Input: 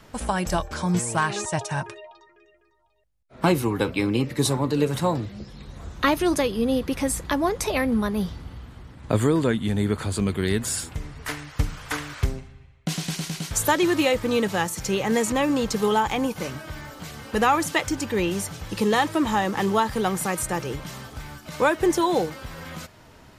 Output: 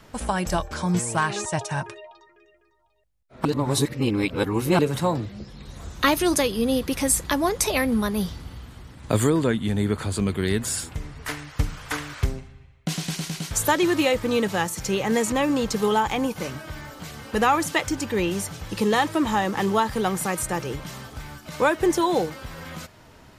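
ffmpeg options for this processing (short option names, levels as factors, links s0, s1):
-filter_complex "[0:a]asettb=1/sr,asplit=3[s0][s1][s2];[s0]atrim=end=5.654[s3];[s1]atrim=start=5.65:end=9.3,asetpts=PTS-STARTPTS,afade=t=in:d=0.004:c=qsin,afade=t=out:st=3.646:d=0.004:c=qsin,highshelf=f=3700:g=8.5[s4];[s2]atrim=start=9.296[s5];[s3][s4]acrossfade=d=0.004:c1=hsin:c2=qsin[s6];[s6][s5]acrossfade=d=0.004:c1=qsin:c2=hsin,asplit=3[s7][s8][s9];[s7]atrim=end=3.452[s10];[s8]atrim=start=3.448:end=4.792,asetpts=PTS-STARTPTS,areverse[s11];[s9]atrim=start=4.788[s12];[s10][s11]acrossfade=d=0.004:c1=hsin:c2=hsin[s13];[s13][s12]acrossfade=d=0.004:c1=hsin:c2=hsin"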